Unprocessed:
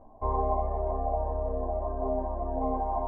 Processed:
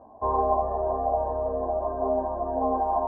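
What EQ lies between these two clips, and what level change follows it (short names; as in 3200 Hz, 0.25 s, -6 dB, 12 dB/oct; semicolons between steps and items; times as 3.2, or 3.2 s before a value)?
HPF 57 Hz; elliptic low-pass 1700 Hz, stop band 40 dB; low shelf 210 Hz -8.5 dB; +6.5 dB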